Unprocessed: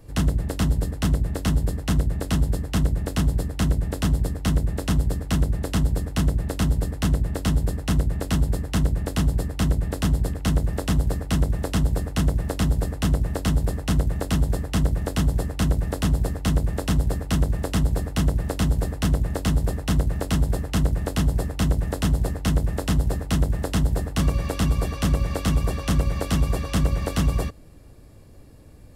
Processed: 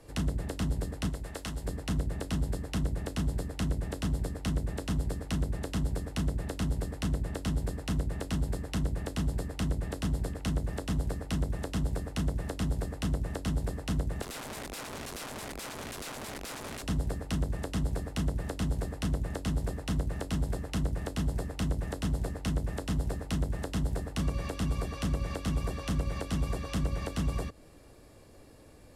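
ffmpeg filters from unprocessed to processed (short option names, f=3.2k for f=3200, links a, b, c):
-filter_complex "[0:a]asettb=1/sr,asplit=3[a][b][c];[a]atrim=end=1.094[d];[b]atrim=start=1.09:end=1.66,asetpts=PTS-STARTPTS,afade=t=in:d=0.004:c=qsin,afade=t=out:st=0.566:d=0.004:c=qsin,equalizer=f=140:w=0.3:g=-9[e];[c]atrim=start=1.656[f];[d][e]acrossfade=d=0.004:c1=hsin:c2=qsin[g];[g][f]acrossfade=d=0.004:c1=qsin:c2=hsin,asettb=1/sr,asplit=3[h][i][j];[h]atrim=end=14.224[k];[i]atrim=start=14.22:end=16.83,asetpts=PTS-STARTPTS,afade=t=in:d=0.004:c=qsin,afade=t=out:st=2.606:d=0.004:c=qsin,aeval=exprs='(mod(22.4*val(0)+1,2)-1)/22.4':c=same[l];[j]atrim=start=16.826[m];[k][l]acrossfade=d=0.004:c1=hsin:c2=qsin[n];[n][m]acrossfade=d=0.004:c1=qsin:c2=hsin,lowpass=12k,bass=f=250:g=-10,treble=f=4k:g=0,acrossover=split=270[o][p];[p]acompressor=threshold=-38dB:ratio=6[q];[o][q]amix=inputs=2:normalize=0"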